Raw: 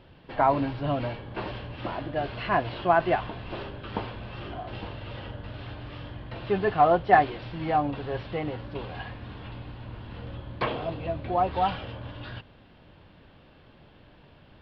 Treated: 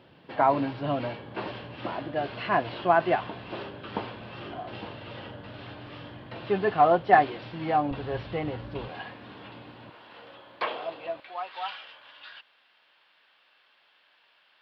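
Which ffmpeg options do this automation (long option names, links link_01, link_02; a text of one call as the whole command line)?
ffmpeg -i in.wav -af "asetnsamples=nb_out_samples=441:pad=0,asendcmd='7.91 highpass f 52;8.88 highpass f 220;9.9 highpass f 550;11.2 highpass f 1400',highpass=150" out.wav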